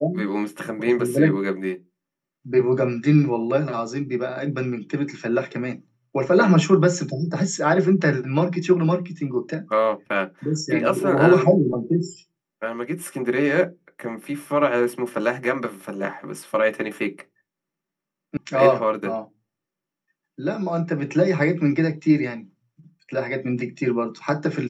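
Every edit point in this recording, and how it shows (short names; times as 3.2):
18.37 sound cut off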